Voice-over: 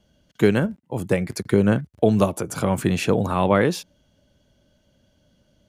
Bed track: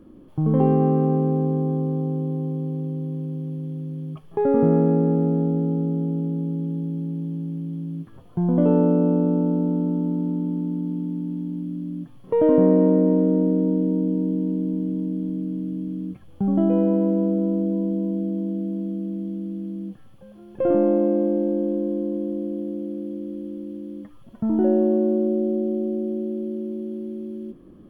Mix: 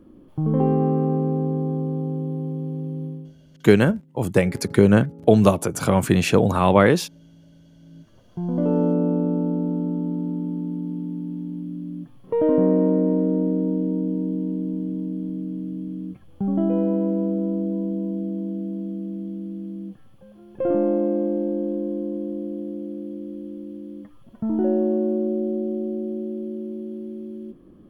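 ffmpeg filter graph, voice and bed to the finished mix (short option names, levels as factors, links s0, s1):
-filter_complex "[0:a]adelay=3250,volume=1.41[s0];[1:a]volume=8.91,afade=t=out:st=3.05:d=0.29:silence=0.0891251,afade=t=in:st=7.77:d=1.07:silence=0.0944061[s1];[s0][s1]amix=inputs=2:normalize=0"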